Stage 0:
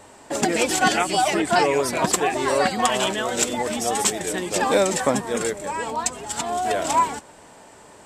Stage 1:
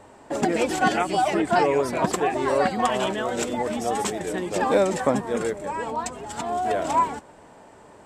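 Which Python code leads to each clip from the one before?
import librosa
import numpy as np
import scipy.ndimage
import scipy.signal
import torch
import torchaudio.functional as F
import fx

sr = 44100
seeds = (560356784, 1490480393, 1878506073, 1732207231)

y = fx.high_shelf(x, sr, hz=2400.0, db=-11.5)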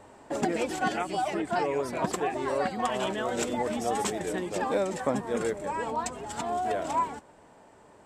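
y = fx.rider(x, sr, range_db=3, speed_s=0.5)
y = y * librosa.db_to_amplitude(-5.5)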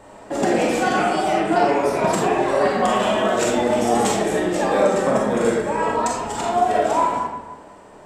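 y = fx.rev_freeverb(x, sr, rt60_s=1.2, hf_ratio=0.6, predelay_ms=0, drr_db=-4.0)
y = y * librosa.db_to_amplitude(5.0)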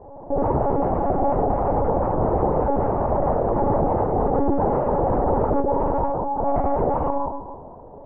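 y = (np.mod(10.0 ** (14.5 / 20.0) * x + 1.0, 2.0) - 1.0) / 10.0 ** (14.5 / 20.0)
y = scipy.signal.sosfilt(scipy.signal.ellip(3, 1.0, 60, [150.0, 870.0], 'bandpass', fs=sr, output='sos'), y)
y = fx.lpc_monotone(y, sr, seeds[0], pitch_hz=280.0, order=10)
y = y * librosa.db_to_amplitude(4.5)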